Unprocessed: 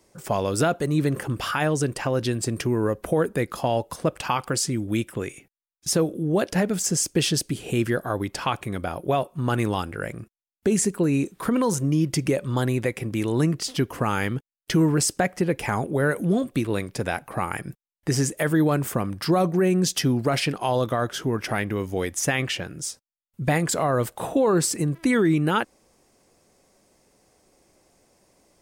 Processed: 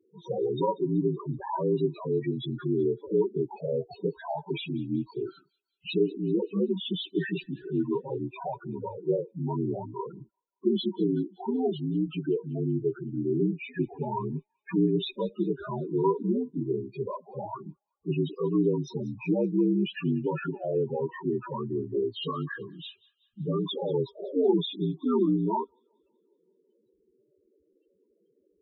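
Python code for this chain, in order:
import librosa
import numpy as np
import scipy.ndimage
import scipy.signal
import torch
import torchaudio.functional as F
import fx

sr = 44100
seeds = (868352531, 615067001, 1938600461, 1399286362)

p1 = fx.partial_stretch(x, sr, pct=77)
p2 = fx.highpass(p1, sr, hz=160.0, slope=6, at=(11.43, 12.6))
p3 = fx.clip_asym(p2, sr, top_db=-29.0, bottom_db=-14.0)
p4 = p2 + (p3 * 10.0 ** (-5.0 / 20.0))
p5 = fx.wow_flutter(p4, sr, seeds[0], rate_hz=2.1, depth_cents=39.0)
p6 = fx.small_body(p5, sr, hz=(390.0, 950.0), ring_ms=50, db=8)
p7 = fx.spec_topn(p6, sr, count=8)
p8 = p7 + fx.echo_wet_highpass(p7, sr, ms=189, feedback_pct=51, hz=3700.0, wet_db=-18, dry=0)
y = p8 * 10.0 ** (-7.5 / 20.0)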